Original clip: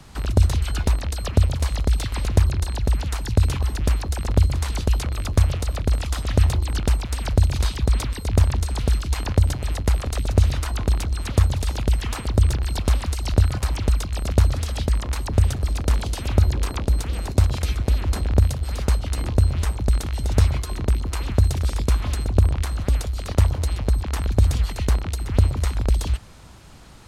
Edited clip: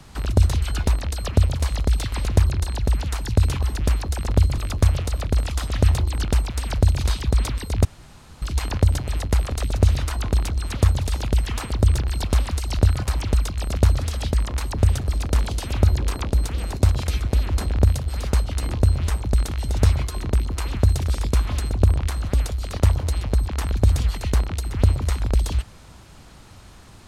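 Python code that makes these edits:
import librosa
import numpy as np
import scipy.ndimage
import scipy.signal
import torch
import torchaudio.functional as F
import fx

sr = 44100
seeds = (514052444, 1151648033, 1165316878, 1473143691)

y = fx.edit(x, sr, fx.cut(start_s=4.58, length_s=0.55),
    fx.room_tone_fill(start_s=8.4, length_s=0.57), tone=tone)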